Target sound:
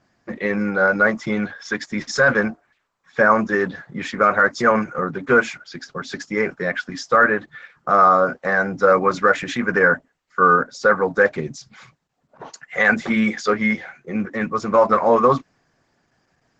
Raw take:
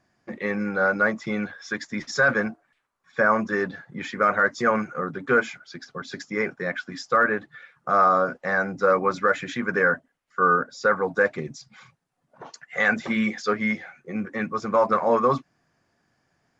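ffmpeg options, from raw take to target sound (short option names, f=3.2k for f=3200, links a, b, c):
-af "volume=5.5dB" -ar 48000 -c:a libopus -b:a 12k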